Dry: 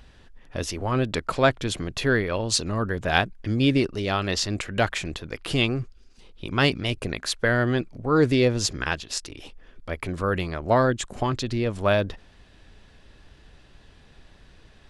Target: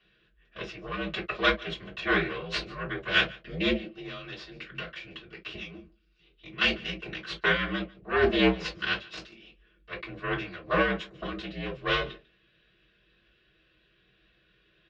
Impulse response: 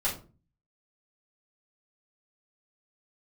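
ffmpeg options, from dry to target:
-filter_complex "[0:a]equalizer=f=920:w=3.9:g=-11.5,asettb=1/sr,asplit=3[a][b][c];[a]atrim=end=3.744[d];[b]atrim=start=3.74:end=6.61,asetpts=PTS-STARTPTS,afade=t=in:d=0.004:c=qsin,afade=t=out:st=2.866:d=0.004:c=qsin,acompressor=threshold=-29dB:ratio=4[e];[c]atrim=start=6.606[f];[d][e]acrossfade=d=0.004:c1=hsin:c2=qsin[g];[g][f]acrossfade=d=0.004:c1=qsin:c2=hsin,aeval=exprs='0.631*(cos(1*acos(clip(val(0)/0.631,-1,1)))-cos(1*PI/2))+0.0891*(cos(3*acos(clip(val(0)/0.631,-1,1)))-cos(3*PI/2))+0.0891*(cos(6*acos(clip(val(0)/0.631,-1,1)))-cos(6*PI/2))+0.0251*(cos(7*acos(clip(val(0)/0.631,-1,1)))-cos(7*PI/2))':c=same,afreqshift=-59,highpass=190,equalizer=f=270:t=q:w=4:g=-3,equalizer=f=890:t=q:w=4:g=-8,equalizer=f=2.8k:t=q:w=4:g=5,lowpass=f=4.2k:w=0.5412,lowpass=f=4.2k:w=1.3066,aecho=1:1:146:0.0708[h];[1:a]atrim=start_sample=2205,atrim=end_sample=6174,asetrate=83790,aresample=44100[i];[h][i]afir=irnorm=-1:irlink=0"

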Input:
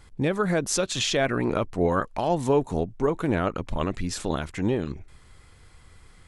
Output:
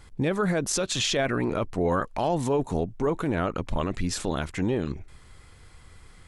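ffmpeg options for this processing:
-af "alimiter=limit=-18dB:level=0:latency=1:release=13,volume=1.5dB"

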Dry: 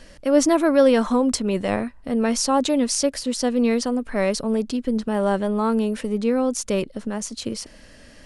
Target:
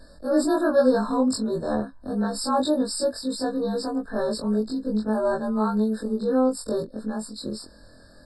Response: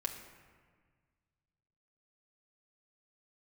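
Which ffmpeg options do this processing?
-af "afftfilt=real='re':imag='-im':win_size=2048:overlap=0.75,afftfilt=real='re*eq(mod(floor(b*sr/1024/1800),2),0)':imag='im*eq(mod(floor(b*sr/1024/1800),2),0)':win_size=1024:overlap=0.75,volume=1.5dB"

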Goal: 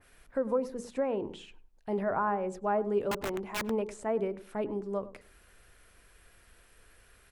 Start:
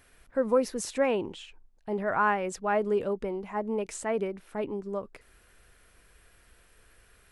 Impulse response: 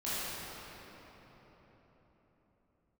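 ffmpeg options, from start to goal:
-filter_complex "[0:a]bandreject=f=60:t=h:w=6,bandreject=f=120:t=h:w=6,bandreject=f=180:t=h:w=6,bandreject=f=240:t=h:w=6,bandreject=f=300:t=h:w=6,bandreject=f=360:t=h:w=6,bandreject=f=420:t=h:w=6,bandreject=f=480:t=h:w=6,acrossover=split=1200[a][b];[b]acompressor=threshold=-47dB:ratio=6[c];[a][c]amix=inputs=2:normalize=0,alimiter=limit=-20dB:level=0:latency=1:release=477,asettb=1/sr,asplit=3[d][e][f];[d]atrim=end=3.114[g];[e]atrim=start=3.11:end=3.7,asetpts=PTS-STARTPTS,afade=t=in:d=0.004:c=qsin,afade=t=out:st=0.586:d=0.004:c=qsin,aeval=exprs='(mod(22.4*val(0)+1,2)-1)/22.4':c=same[h];[f]atrim=start=3.696[i];[g][h]acrossfade=d=0.004:c1=hsin:c2=qsin[j];[j][i]acrossfade=d=0.004:c1=qsin:c2=hsin,asplit=2[k][l];[l]adelay=101,lowpass=f=1k:p=1,volume=-14.5dB,asplit=2[m][n];[n]adelay=101,lowpass=f=1k:p=1,volume=0.26,asplit=2[o][p];[p]adelay=101,lowpass=f=1k:p=1,volume=0.26[q];[m][o][q]amix=inputs=3:normalize=0[r];[k][r]amix=inputs=2:normalize=0,adynamicequalizer=threshold=0.00447:dfrequency=2500:dqfactor=0.7:tfrequency=2500:tqfactor=0.7:attack=5:release=100:ratio=0.375:range=2:mode=cutabove:tftype=highshelf"

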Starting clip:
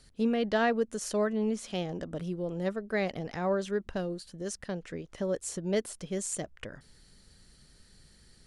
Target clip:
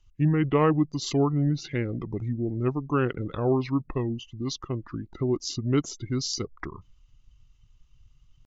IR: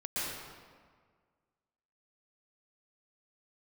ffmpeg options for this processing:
-af "asetrate=29433,aresample=44100,atempo=1.49831,afftdn=nr=20:nf=-48,volume=5.5dB"

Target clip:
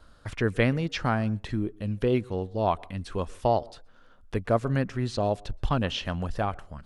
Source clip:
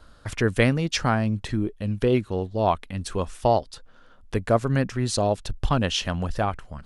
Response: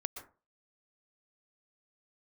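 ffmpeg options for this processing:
-filter_complex "[0:a]asplit=2[a][b];[1:a]atrim=start_sample=2205,highshelf=f=3.3k:g=-10.5[c];[b][c]afir=irnorm=-1:irlink=0,volume=-16dB[d];[a][d]amix=inputs=2:normalize=0,acrossover=split=4500[e][f];[f]acompressor=threshold=-47dB:ratio=4:attack=1:release=60[g];[e][g]amix=inputs=2:normalize=0,volume=-4.5dB"

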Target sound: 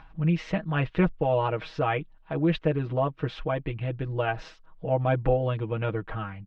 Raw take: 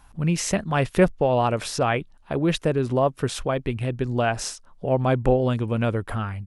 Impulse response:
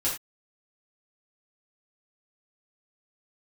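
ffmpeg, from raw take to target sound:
-af "lowpass=f=3.4k:w=0.5412,lowpass=f=3.4k:w=1.3066,aecho=1:1:6.3:0.89,acompressor=mode=upward:threshold=-37dB:ratio=2.5,volume=-6.5dB"

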